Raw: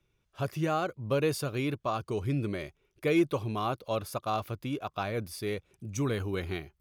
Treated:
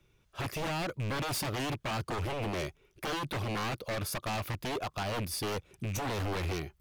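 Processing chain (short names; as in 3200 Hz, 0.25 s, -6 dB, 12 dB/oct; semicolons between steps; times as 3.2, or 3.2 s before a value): rattling part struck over -37 dBFS, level -39 dBFS; limiter -26.5 dBFS, peak gain reduction 9.5 dB; wavefolder -35 dBFS; gain +6.5 dB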